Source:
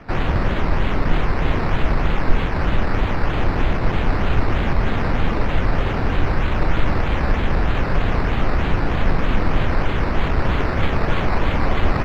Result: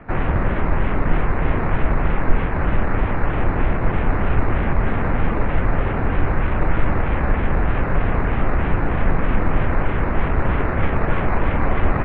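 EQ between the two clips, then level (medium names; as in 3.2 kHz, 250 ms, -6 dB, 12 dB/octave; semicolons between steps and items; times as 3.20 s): low-pass 2.4 kHz 24 dB/octave; 0.0 dB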